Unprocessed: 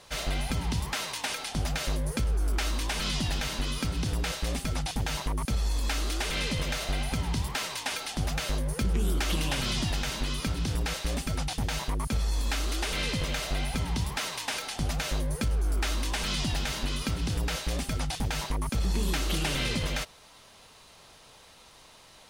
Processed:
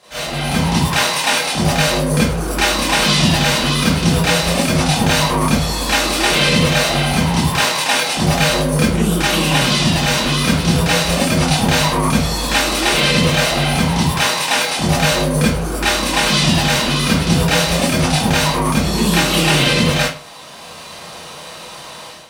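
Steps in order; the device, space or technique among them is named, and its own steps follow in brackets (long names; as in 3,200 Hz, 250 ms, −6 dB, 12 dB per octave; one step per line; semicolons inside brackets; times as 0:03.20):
far laptop microphone (convolution reverb RT60 0.40 s, pre-delay 25 ms, DRR −9.5 dB; high-pass filter 100 Hz 12 dB per octave; automatic gain control gain up to 11.5 dB)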